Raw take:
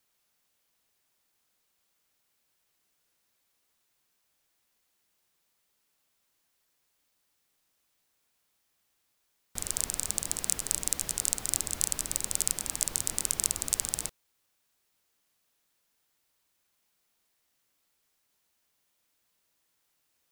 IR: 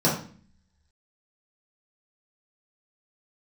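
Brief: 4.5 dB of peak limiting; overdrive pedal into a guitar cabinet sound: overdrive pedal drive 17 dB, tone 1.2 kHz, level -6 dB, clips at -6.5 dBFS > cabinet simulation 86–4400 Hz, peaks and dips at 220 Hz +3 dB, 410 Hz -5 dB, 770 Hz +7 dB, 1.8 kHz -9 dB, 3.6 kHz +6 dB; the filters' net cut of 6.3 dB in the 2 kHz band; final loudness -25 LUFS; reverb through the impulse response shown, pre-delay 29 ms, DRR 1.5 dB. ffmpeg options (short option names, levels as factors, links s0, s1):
-filter_complex "[0:a]equalizer=f=2000:t=o:g=-5,alimiter=limit=0.447:level=0:latency=1,asplit=2[s0][s1];[1:a]atrim=start_sample=2205,adelay=29[s2];[s1][s2]afir=irnorm=-1:irlink=0,volume=0.141[s3];[s0][s3]amix=inputs=2:normalize=0,asplit=2[s4][s5];[s5]highpass=f=720:p=1,volume=7.08,asoftclip=type=tanh:threshold=0.473[s6];[s4][s6]amix=inputs=2:normalize=0,lowpass=f=1200:p=1,volume=0.501,highpass=86,equalizer=f=220:t=q:w=4:g=3,equalizer=f=410:t=q:w=4:g=-5,equalizer=f=770:t=q:w=4:g=7,equalizer=f=1800:t=q:w=4:g=-9,equalizer=f=3600:t=q:w=4:g=6,lowpass=f=4400:w=0.5412,lowpass=f=4400:w=1.3066,volume=3.98"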